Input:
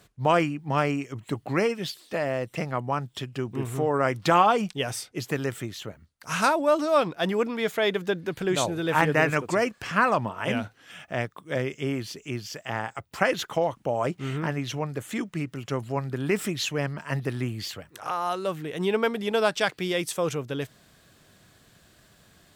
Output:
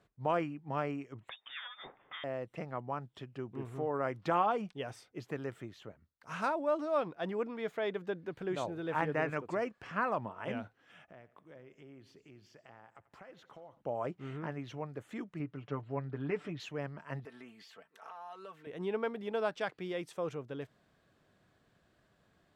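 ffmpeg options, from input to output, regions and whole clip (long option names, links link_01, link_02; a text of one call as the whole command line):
ffmpeg -i in.wav -filter_complex "[0:a]asettb=1/sr,asplit=3[link_01][link_02][link_03];[link_01]atrim=end=1.294[link_04];[link_02]atrim=start=1.29:end=2.24,asetpts=PTS-STARTPTS,afade=type=in:duration=0.004:curve=qsin,afade=type=out:start_time=0.946:duration=0.004:curve=qsin,equalizer=frequency=2200:width_type=o:width=2.8:gain=14,acrossover=split=160|340[link_05][link_06][link_07];[link_05]acompressor=threshold=-47dB:ratio=4[link_08];[link_06]acompressor=threshold=-35dB:ratio=4[link_09];[link_07]acompressor=threshold=-32dB:ratio=4[link_10];[link_08][link_09][link_10]amix=inputs=3:normalize=0,lowpass=frequency=3200:width_type=q:width=0.5098,lowpass=frequency=3200:width_type=q:width=0.6013,lowpass=frequency=3200:width_type=q:width=0.9,lowpass=frequency=3200:width_type=q:width=2.563,afreqshift=-3800[link_11];[link_03]atrim=start=2.236[link_12];[link_04][link_11]acrossfade=duration=0.004:curve1=hsin:curve2=qsin[link_13];[link_13][link_12]acrossfade=duration=0.004:curve1=qsin:curve2=hsin,asettb=1/sr,asplit=3[link_14][link_15][link_16];[link_14]atrim=end=11.034[link_17];[link_15]atrim=start=11.03:end=13.81,asetpts=PTS-STARTPTS,afade=type=in:duration=0.004:curve=qsin,afade=type=out:start_time=2.776:duration=0.004:curve=qsin,acompressor=threshold=-42dB:ratio=4:attack=3.2:release=140:knee=1:detection=peak,aecho=1:1:88|176|264|352|440:0.126|0.0705|0.0395|0.0221|0.0124,atrim=end_sample=122598[link_18];[link_16]atrim=start=13.806[link_19];[link_17][link_18]acrossfade=duration=0.004:curve1=hsin:curve2=qsin[link_20];[link_20][link_19]acrossfade=duration=0.004:curve1=qsin:curve2=hsin,asettb=1/sr,asplit=3[link_21][link_22][link_23];[link_21]atrim=end=15.394[link_24];[link_22]atrim=start=15.39:end=16.6,asetpts=PTS-STARTPTS,afade=type=in:duration=0.004:curve=qsin,afade=type=out:start_time=1.206:duration=0.004:curve=qsin,lowpass=4100,aecho=1:1:6.8:0.62,atrim=end_sample=53361[link_25];[link_23]atrim=start=16.596[link_26];[link_24][link_25]acrossfade=duration=0.004:curve1=hsin:curve2=qsin[link_27];[link_27][link_26]acrossfade=duration=0.004:curve1=qsin:curve2=hsin,asettb=1/sr,asplit=3[link_28][link_29][link_30];[link_28]atrim=end=17.254[link_31];[link_29]atrim=start=17.25:end=18.67,asetpts=PTS-STARTPTS,afade=type=in:duration=0.004:curve=qsin,afade=type=out:start_time=1.416:duration=0.004:curve=qsin,highpass=frequency=790:poles=1,aecho=1:1:4.5:0.67,atrim=end_sample=62622,acompressor=threshold=-34dB:ratio=4:attack=3.2:release=140:knee=1:detection=peak[link_32];[link_30]atrim=start=18.666[link_33];[link_31][link_32]acrossfade=duration=0.004:curve1=hsin:curve2=qsin[link_34];[link_34][link_33]acrossfade=duration=0.004:curve1=qsin:curve2=hsin,lowpass=frequency=1100:poles=1,lowshelf=frequency=260:gain=-6.5,volume=-7.5dB" out.wav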